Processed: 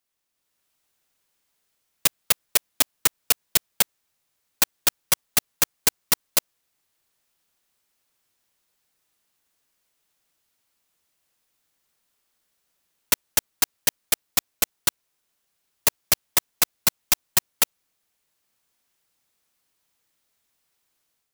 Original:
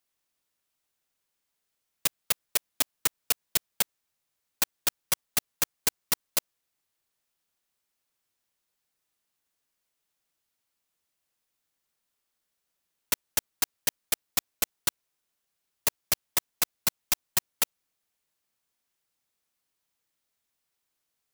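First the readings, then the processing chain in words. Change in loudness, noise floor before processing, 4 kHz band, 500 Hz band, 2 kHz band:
+6.0 dB, −82 dBFS, +6.0 dB, +6.0 dB, +6.0 dB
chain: automatic gain control gain up to 7.5 dB

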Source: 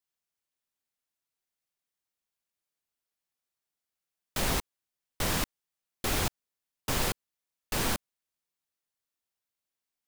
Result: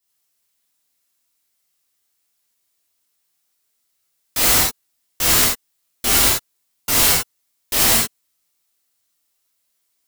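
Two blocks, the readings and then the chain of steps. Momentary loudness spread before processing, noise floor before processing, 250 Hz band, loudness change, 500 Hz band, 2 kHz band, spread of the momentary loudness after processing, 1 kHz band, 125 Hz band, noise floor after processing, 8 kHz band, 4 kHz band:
8 LU, below −85 dBFS, +7.5 dB, +16.5 dB, +8.5 dB, +12.5 dB, 12 LU, +10.5 dB, +5.5 dB, −70 dBFS, +18.5 dB, +15.5 dB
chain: high-shelf EQ 3,500 Hz +9 dB
wrap-around overflow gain 19 dB
reverb whose tail is shaped and stops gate 120 ms flat, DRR −7 dB
level +3.5 dB

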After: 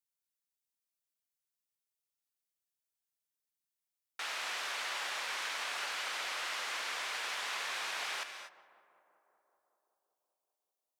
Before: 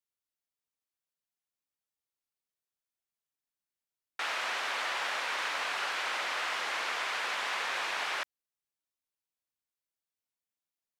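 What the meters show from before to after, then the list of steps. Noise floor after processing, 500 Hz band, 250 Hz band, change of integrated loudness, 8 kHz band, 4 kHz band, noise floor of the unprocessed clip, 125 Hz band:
below −85 dBFS, −7.0 dB, −7.0 dB, −4.0 dB, +1.0 dB, −2.5 dB, below −85 dBFS, can't be measured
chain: high-shelf EQ 3,700 Hz +10.5 dB
tape delay 191 ms, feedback 82%, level −16 dB, low-pass 1,800 Hz
reverb whose tail is shaped and stops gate 270 ms rising, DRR 7.5 dB
level −8 dB

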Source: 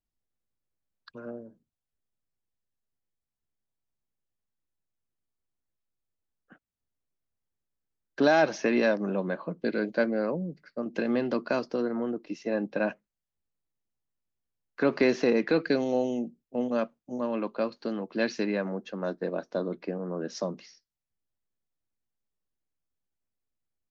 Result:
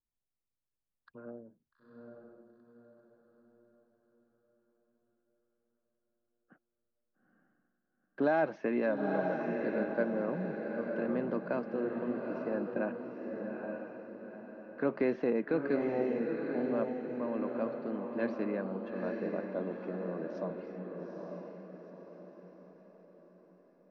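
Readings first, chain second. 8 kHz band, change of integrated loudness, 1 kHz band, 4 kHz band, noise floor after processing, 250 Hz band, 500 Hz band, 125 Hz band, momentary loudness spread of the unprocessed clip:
can't be measured, −5.5 dB, −5.0 dB, below −15 dB, below −85 dBFS, −4.5 dB, −4.5 dB, −4.5 dB, 11 LU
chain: low-pass filter 1,700 Hz 12 dB per octave
on a send: feedback delay with all-pass diffusion 874 ms, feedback 44%, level −3.5 dB
on the sum: level −6.5 dB

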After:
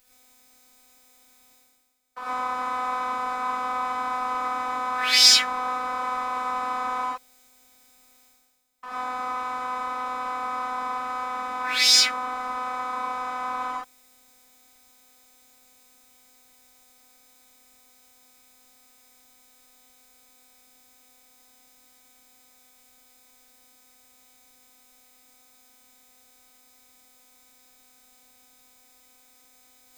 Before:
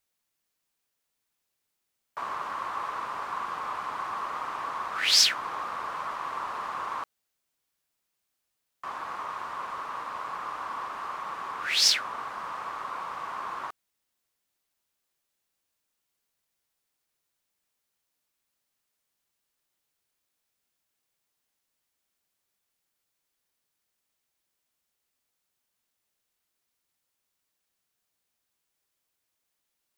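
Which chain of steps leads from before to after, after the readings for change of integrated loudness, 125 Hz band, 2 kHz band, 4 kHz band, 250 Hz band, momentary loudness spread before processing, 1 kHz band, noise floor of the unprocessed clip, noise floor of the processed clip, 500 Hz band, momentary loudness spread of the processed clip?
+5.5 dB, can't be measured, +5.5 dB, +5.5 dB, +10.0 dB, 15 LU, +6.0 dB, −81 dBFS, −58 dBFS, +6.0 dB, 15 LU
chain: low-shelf EQ 240 Hz +5 dB
phases set to zero 252 Hz
reverb whose tail is shaped and stops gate 140 ms rising, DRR −7.5 dB
reversed playback
upward compression, threshold −41 dBFS
reversed playback

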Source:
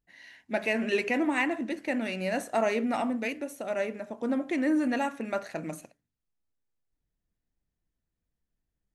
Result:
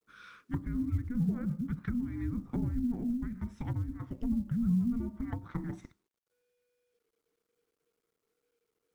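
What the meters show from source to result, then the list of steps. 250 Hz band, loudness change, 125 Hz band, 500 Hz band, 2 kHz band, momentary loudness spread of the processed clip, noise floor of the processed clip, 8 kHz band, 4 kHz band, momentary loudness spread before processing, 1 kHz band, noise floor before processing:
−2.0 dB, −4.5 dB, +13.5 dB, −21.0 dB, −21.0 dB, 10 LU, −85 dBFS, below −15 dB, below −20 dB, 8 LU, −18.5 dB, −85 dBFS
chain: treble cut that deepens with the level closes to 500 Hz, closed at −26.5 dBFS
frequency shifter −490 Hz
log-companded quantiser 8 bits
level −1.5 dB

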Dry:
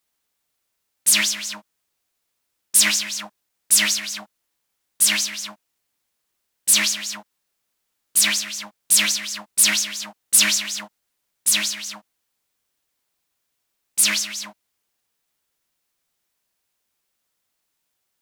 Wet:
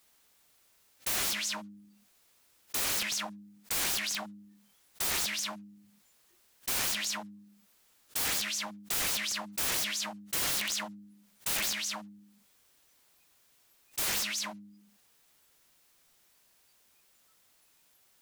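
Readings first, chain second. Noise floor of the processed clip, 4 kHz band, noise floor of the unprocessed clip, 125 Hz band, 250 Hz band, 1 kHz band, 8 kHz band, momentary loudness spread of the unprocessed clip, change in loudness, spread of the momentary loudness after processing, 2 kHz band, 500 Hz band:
−67 dBFS, −11.5 dB, −76 dBFS, can't be measured, −7.5 dB, −2.5 dB, −15.0 dB, 16 LU, −13.0 dB, 11 LU, −11.0 dB, −2.0 dB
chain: hum removal 102.1 Hz, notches 3
wrap-around overflow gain 18.5 dB
noise reduction from a noise print of the clip's start 20 dB
envelope flattener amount 50%
level −7.5 dB

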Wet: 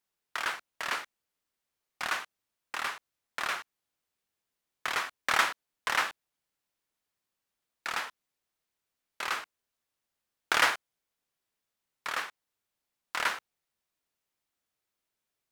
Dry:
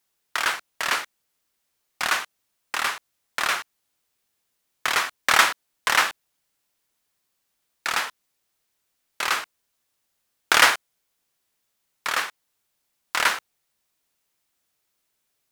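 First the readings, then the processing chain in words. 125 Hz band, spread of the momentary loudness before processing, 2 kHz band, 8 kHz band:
can't be measured, 15 LU, −8.5 dB, −12.0 dB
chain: high-shelf EQ 4,000 Hz −5.5 dB
level −7.5 dB

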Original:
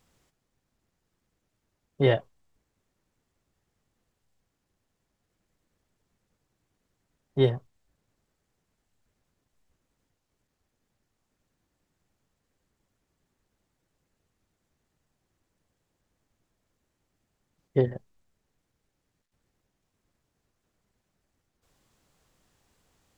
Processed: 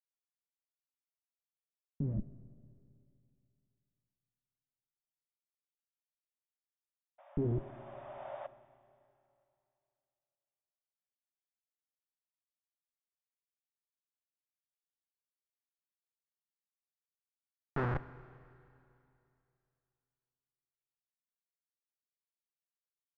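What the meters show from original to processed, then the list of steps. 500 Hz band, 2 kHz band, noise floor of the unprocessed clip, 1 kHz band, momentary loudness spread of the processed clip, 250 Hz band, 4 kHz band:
−15.0 dB, −8.5 dB, −80 dBFS, −3.0 dB, 18 LU, −7.5 dB, below −20 dB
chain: comparator with hysteresis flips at −38.5 dBFS
sound drawn into the spectrogram noise, 0:07.18–0:08.47, 540–3,700 Hz −42 dBFS
low-pass filter sweep 200 Hz → 1,500 Hz, 0:06.70–0:10.04
four-comb reverb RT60 2.7 s, combs from 27 ms, DRR 14.5 dB
level +5 dB

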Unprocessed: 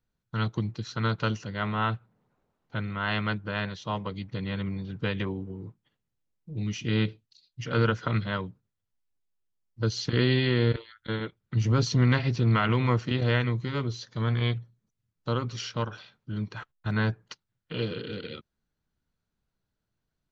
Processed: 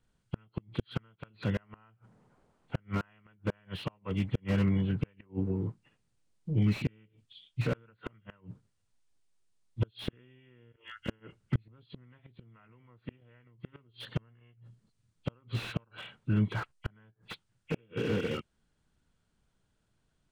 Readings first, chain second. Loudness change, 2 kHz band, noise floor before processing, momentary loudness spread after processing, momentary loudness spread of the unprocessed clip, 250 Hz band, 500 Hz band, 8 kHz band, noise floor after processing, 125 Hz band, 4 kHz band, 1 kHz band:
−6.0 dB, −11.5 dB, −83 dBFS, 21 LU, 14 LU, −5.0 dB, −8.0 dB, can't be measured, −76 dBFS, −7.5 dB, −11.5 dB, −14.0 dB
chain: hearing-aid frequency compression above 2,000 Hz 1.5 to 1
in parallel at +2 dB: downward compressor 12 to 1, threshold −31 dBFS, peak gain reduction 14.5 dB
on the sum: gate with flip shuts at −16 dBFS, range −38 dB
slew-rate limiting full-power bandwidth 26 Hz

